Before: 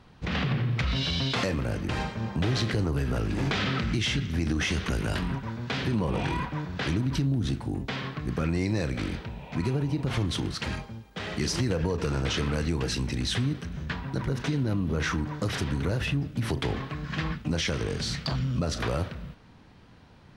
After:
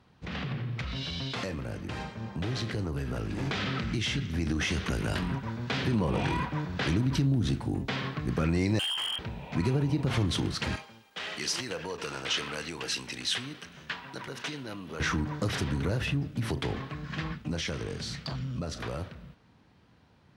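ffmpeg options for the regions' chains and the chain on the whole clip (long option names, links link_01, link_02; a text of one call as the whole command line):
ffmpeg -i in.wav -filter_complex "[0:a]asettb=1/sr,asplit=3[link_01][link_02][link_03];[link_01]atrim=end=8.794[link_04];[link_02]atrim=start=8.79:end=9.19,asetpts=PTS-STARTPTS,afade=type=in:duration=0.004:curve=qsin,afade=type=out:start_time=0.396:duration=0.004:curve=qsin,lowpass=frequency=2800:width_type=q:width=0.5098,lowpass=frequency=2800:width_type=q:width=0.6013,lowpass=frequency=2800:width_type=q:width=0.9,lowpass=frequency=2800:width_type=q:width=2.563,afreqshift=-3300,asoftclip=type=hard:threshold=-29dB[link_05];[link_03]atrim=start=9.186[link_06];[link_04][link_05]acrossfade=duration=0.004:curve1=hsin:curve2=qsin[link_07];[link_07][link_06]acrossfade=duration=0.004:curve1=qsin:curve2=hsin,asettb=1/sr,asplit=3[link_08][link_09][link_10];[link_08]atrim=end=10.764[link_11];[link_09]atrim=start=10.76:end=15,asetpts=PTS-STARTPTS,afade=type=in:duration=0.004:curve=qsin,afade=type=out:start_time=4.236:duration=0.004:curve=qsin,highpass=frequency=1000:poles=1,equalizer=frequency=2900:width_type=o:width=0.36:gain=3.5[link_12];[link_10]atrim=start=14.996[link_13];[link_11][link_12]acrossfade=duration=0.004:curve1=hsin:curve2=qsin[link_14];[link_14][link_13]acrossfade=duration=0.004:curve1=qsin:curve2=hsin,highpass=58,dynaudnorm=framelen=410:gausssize=21:maxgain=7.5dB,volume=-7dB" out.wav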